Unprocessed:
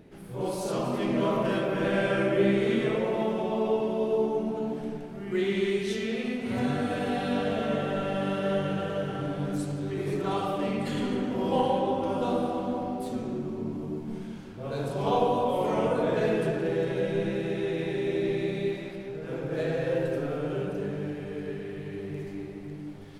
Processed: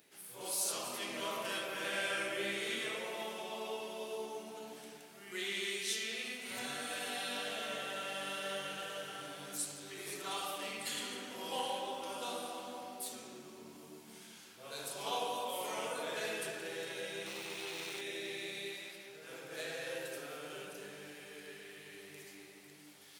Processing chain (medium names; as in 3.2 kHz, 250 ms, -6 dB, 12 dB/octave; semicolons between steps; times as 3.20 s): 17.26–18.01 s: comb filter that takes the minimum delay 0.33 ms; differentiator; trim +7.5 dB